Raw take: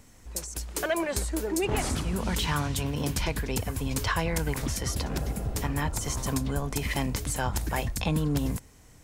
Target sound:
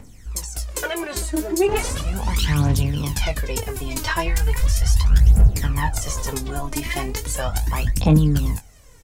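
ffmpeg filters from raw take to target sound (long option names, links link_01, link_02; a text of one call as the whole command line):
ffmpeg -i in.wav -filter_complex "[0:a]asplit=3[link_01][link_02][link_03];[link_01]afade=type=out:start_time=4.27:duration=0.02[link_04];[link_02]asubboost=boost=7.5:cutoff=100,afade=type=in:start_time=4.27:duration=0.02,afade=type=out:start_time=5.47:duration=0.02[link_05];[link_03]afade=type=in:start_time=5.47:duration=0.02[link_06];[link_04][link_05][link_06]amix=inputs=3:normalize=0,acrossover=split=900[link_07][link_08];[link_07]alimiter=limit=-18.5dB:level=0:latency=1:release=154[link_09];[link_09][link_08]amix=inputs=2:normalize=0,aphaser=in_gain=1:out_gain=1:delay=3.3:decay=0.71:speed=0.37:type=triangular,asplit=2[link_10][link_11];[link_11]adelay=20,volume=-9.5dB[link_12];[link_10][link_12]amix=inputs=2:normalize=0,volume=1.5dB" out.wav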